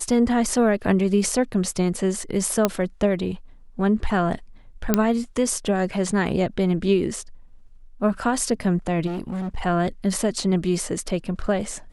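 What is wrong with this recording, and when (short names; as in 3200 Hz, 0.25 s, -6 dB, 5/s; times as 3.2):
2.65 pop -4 dBFS
4.94 pop -3 dBFS
9.06–9.58 clipped -25 dBFS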